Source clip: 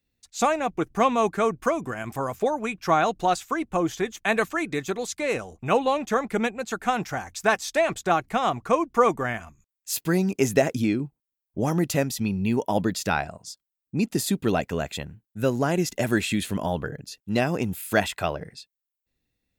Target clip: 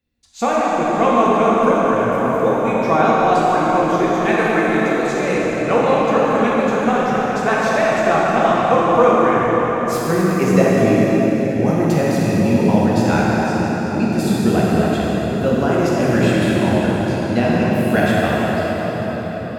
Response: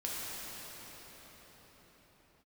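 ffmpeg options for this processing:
-filter_complex "[0:a]highshelf=f=4.7k:g=-10.5[a];[1:a]atrim=start_sample=2205[b];[a][b]afir=irnorm=-1:irlink=0,volume=4.5dB"

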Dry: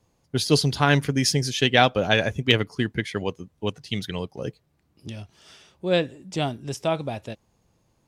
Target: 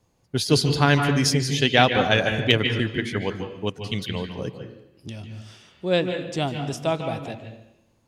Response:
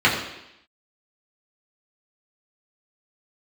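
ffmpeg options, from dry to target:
-filter_complex "[0:a]asplit=2[a][b];[1:a]atrim=start_sample=2205,adelay=145[c];[b][c]afir=irnorm=-1:irlink=0,volume=-26dB[d];[a][d]amix=inputs=2:normalize=0"

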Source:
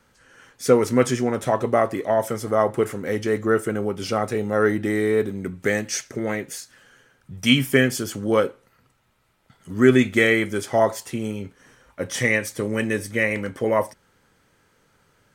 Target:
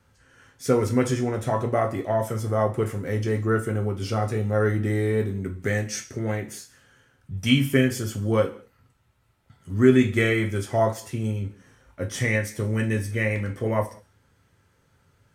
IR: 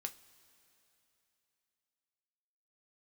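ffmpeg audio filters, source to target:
-filter_complex "[0:a]equalizer=f=76:w=0.66:g=11.5[a];[1:a]atrim=start_sample=2205,afade=t=out:st=0.19:d=0.01,atrim=end_sample=8820,asetrate=29988,aresample=44100[b];[a][b]afir=irnorm=-1:irlink=0,volume=-4.5dB"

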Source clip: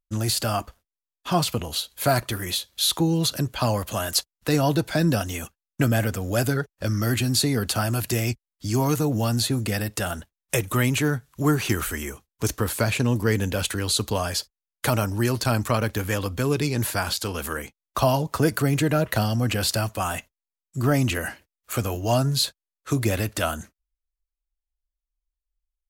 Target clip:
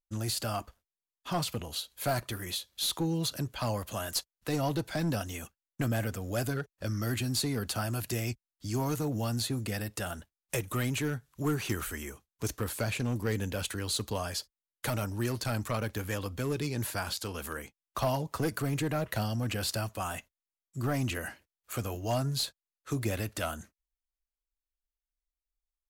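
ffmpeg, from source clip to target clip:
-af "aeval=exprs='clip(val(0),-1,0.141)':c=same,volume=-8.5dB"

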